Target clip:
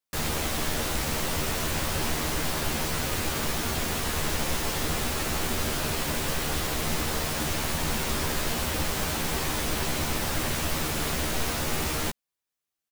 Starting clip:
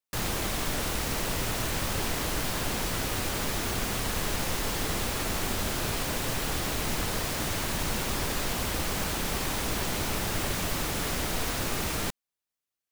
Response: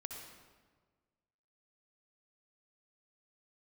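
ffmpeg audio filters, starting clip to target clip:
-filter_complex "[0:a]asplit=2[a][b];[b]adelay=13,volume=-3dB[c];[a][c]amix=inputs=2:normalize=0"

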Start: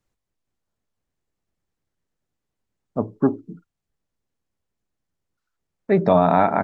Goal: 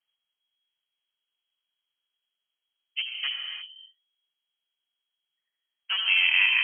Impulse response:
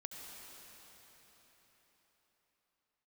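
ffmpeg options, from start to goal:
-filter_complex "[0:a]acrossover=split=140|420|1300[a][b][c][d];[b]aeval=exprs='0.0668*(abs(mod(val(0)/0.0668+3,4)-2)-1)':c=same[e];[a][e][c][d]amix=inputs=4:normalize=0[f];[1:a]atrim=start_sample=2205,afade=t=out:st=0.4:d=0.01,atrim=end_sample=18081[g];[f][g]afir=irnorm=-1:irlink=0,lowpass=f=2.8k:t=q:w=0.5098,lowpass=f=2.8k:t=q:w=0.6013,lowpass=f=2.8k:t=q:w=0.9,lowpass=f=2.8k:t=q:w=2.563,afreqshift=-3300"

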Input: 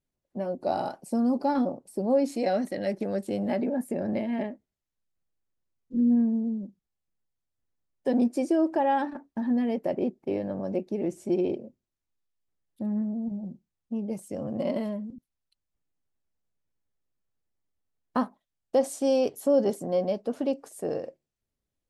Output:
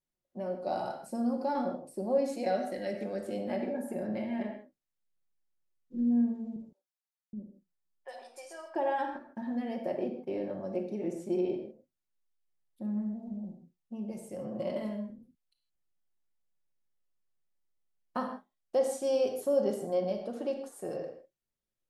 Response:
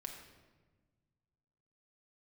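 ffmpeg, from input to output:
-filter_complex "[0:a]lowshelf=f=270:g=-5.5,asettb=1/sr,asplit=3[a][b][c];[a]atrim=end=6.564[d];[b]atrim=start=6.56:end=8.75,asetpts=PTS-STARTPTS,afade=t=in:d=0.004:c=qsin,afade=t=out:st=2.186:d=0.004:c=qsin,acrossover=split=730|2700[e][f][g];[g]adelay=30[h];[e]adelay=770[i];[i][f][h]amix=inputs=3:normalize=0,atrim=end_sample=96579[j];[c]atrim=start=8.746[k];[d][j]acrossfade=d=0.004:c1=hsin:c2=qsin[l];[l][k]acrossfade=d=0.004:c1=qsin:c2=hsin[m];[1:a]atrim=start_sample=2205,atrim=end_sample=6615,asetrate=39249,aresample=44100[n];[m][n]afir=irnorm=-1:irlink=0,volume=-1.5dB"

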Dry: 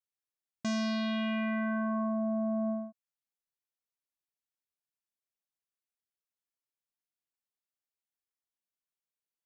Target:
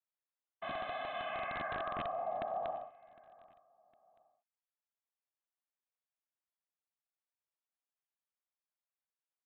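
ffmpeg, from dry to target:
-af "asetrate=46722,aresample=44100,atempo=0.943874,highpass=f=590:w=0.5412,highpass=f=590:w=1.3066,afftfilt=real='hypot(re,im)*cos(2*PI*random(0))':imag='hypot(re,im)*sin(2*PI*random(1))':win_size=512:overlap=0.75,aresample=8000,aeval=exprs='(mod(56.2*val(0)+1,2)-1)/56.2':c=same,aresample=44100,lowpass=f=1.2k:p=1,aecho=1:1:758|1516:0.075|0.027,volume=7.5dB"

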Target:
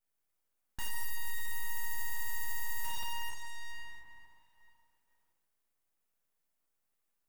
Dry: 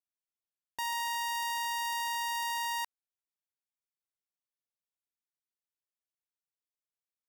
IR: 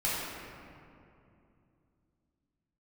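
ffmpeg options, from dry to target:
-filter_complex "[1:a]atrim=start_sample=2205[a];[0:a][a]afir=irnorm=-1:irlink=0,aeval=exprs='abs(val(0))':c=same,aeval=exprs='0.0266*(cos(1*acos(clip(val(0)/0.0266,-1,1)))-cos(1*PI/2))+0.0075*(cos(5*acos(clip(val(0)/0.0266,-1,1)))-cos(5*PI/2))':c=same,equalizer=f=4.3k:t=o:w=1.8:g=-7,volume=1.5dB"

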